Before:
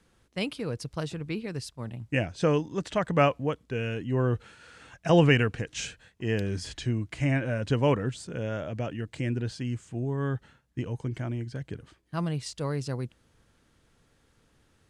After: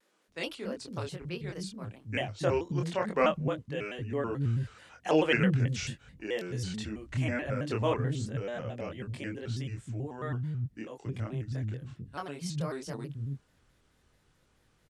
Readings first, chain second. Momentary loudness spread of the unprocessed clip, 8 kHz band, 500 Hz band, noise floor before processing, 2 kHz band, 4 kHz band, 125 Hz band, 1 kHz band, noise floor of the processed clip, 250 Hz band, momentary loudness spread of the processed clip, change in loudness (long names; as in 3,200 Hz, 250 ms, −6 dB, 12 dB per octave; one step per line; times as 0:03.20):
13 LU, −3.5 dB, −3.5 dB, −67 dBFS, −2.5 dB, −3.5 dB, −3.5 dB, −3.0 dB, −69 dBFS, −4.5 dB, 12 LU, −4.0 dB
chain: chorus effect 0.21 Hz, depth 3 ms
multiband delay without the direct sound highs, lows 280 ms, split 250 Hz
pitch modulation by a square or saw wave square 4.6 Hz, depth 160 cents